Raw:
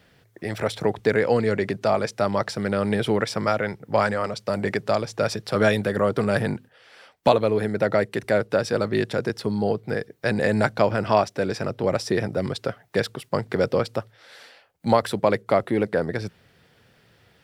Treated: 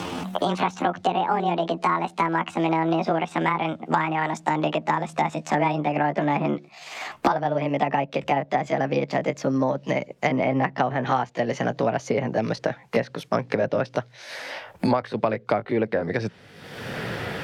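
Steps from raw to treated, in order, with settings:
pitch glide at a constant tempo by +10 semitones ending unshifted
treble cut that deepens with the level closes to 2,000 Hz, closed at −19 dBFS
multiband upward and downward compressor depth 100%

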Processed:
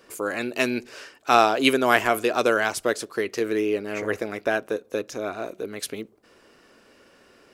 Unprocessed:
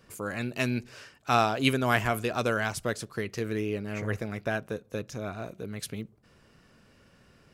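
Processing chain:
low shelf with overshoot 220 Hz −13 dB, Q 1.5
level +6 dB

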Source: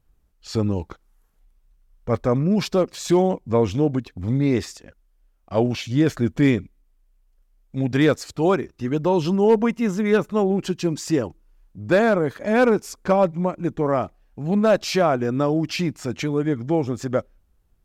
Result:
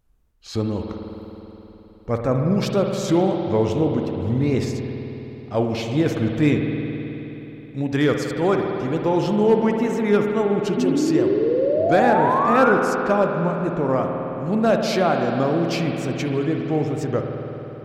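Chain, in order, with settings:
tape wow and flutter 110 cents
sound drawn into the spectrogram rise, 0:10.77–0:12.73, 240–1,500 Hz −20 dBFS
spring reverb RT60 3.7 s, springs 53 ms, chirp 25 ms, DRR 2.5 dB
level −1.5 dB

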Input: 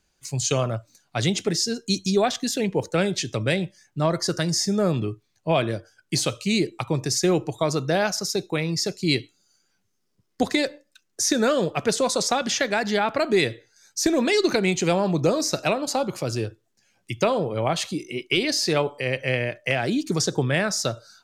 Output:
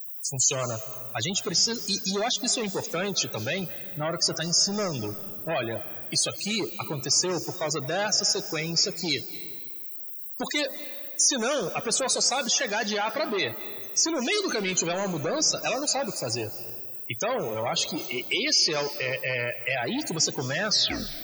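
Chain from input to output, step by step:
turntable brake at the end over 0.57 s
background noise blue −44 dBFS
in parallel at +2 dB: brickwall limiter −17 dBFS, peak gain reduction 8.5 dB
on the sum: soft clipping −17 dBFS, distortion −10 dB
spectral tilt +2.5 dB per octave
spectral peaks only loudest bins 64
on a send at −14 dB: convolution reverb RT60 1.8 s, pre-delay 165 ms
on the sum: level −4 dB

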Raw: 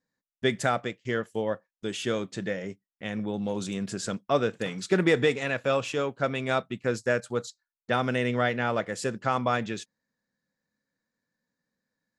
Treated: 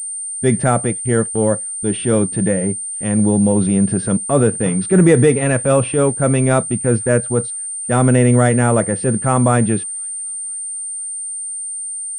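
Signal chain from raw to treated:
spectral tilt −3.5 dB per octave
in parallel at +1.5 dB: brickwall limiter −15.5 dBFS, peak gain reduction 9 dB
on the sum: transient designer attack −5 dB, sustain 0 dB
delay with a high-pass on its return 494 ms, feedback 64%, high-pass 3,100 Hz, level −24 dB
switching amplifier with a slow clock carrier 8,900 Hz
level +3.5 dB

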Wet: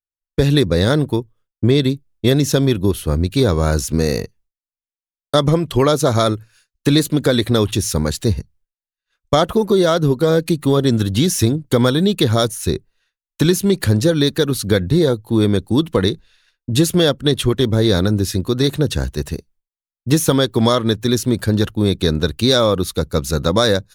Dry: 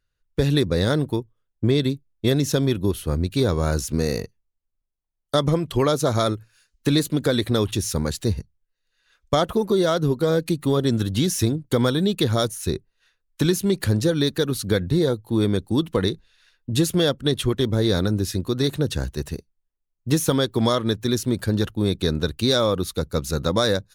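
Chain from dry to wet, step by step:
downward expander −51 dBFS
level +5.5 dB

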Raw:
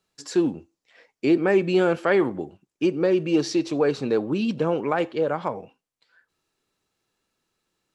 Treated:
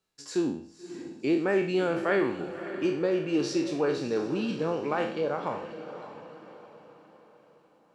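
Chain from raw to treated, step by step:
peak hold with a decay on every bin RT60 0.51 s
feedback delay with all-pass diffusion 582 ms, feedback 45%, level −11.5 dB
level −7 dB

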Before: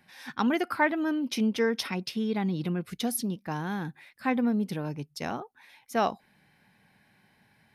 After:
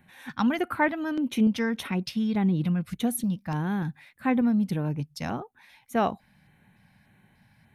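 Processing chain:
low-shelf EQ 180 Hz +12 dB
auto-filter notch square 1.7 Hz 390–5,000 Hz

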